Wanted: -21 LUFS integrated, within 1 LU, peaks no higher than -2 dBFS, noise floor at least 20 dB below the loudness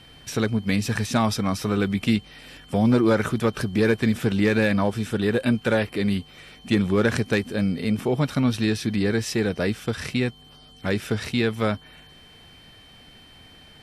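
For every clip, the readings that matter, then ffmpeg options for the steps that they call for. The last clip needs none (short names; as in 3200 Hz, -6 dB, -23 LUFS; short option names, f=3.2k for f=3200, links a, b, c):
steady tone 3100 Hz; tone level -50 dBFS; loudness -23.5 LUFS; peak -9.0 dBFS; loudness target -21.0 LUFS
-> -af "bandreject=f=3.1k:w=30"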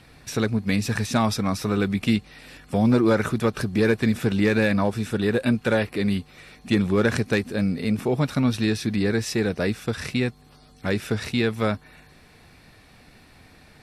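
steady tone none; loudness -23.5 LUFS; peak -8.5 dBFS; loudness target -21.0 LUFS
-> -af "volume=2.5dB"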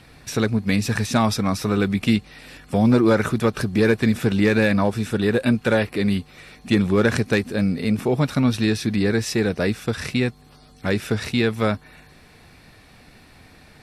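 loudness -21.0 LUFS; peak -6.0 dBFS; noise floor -50 dBFS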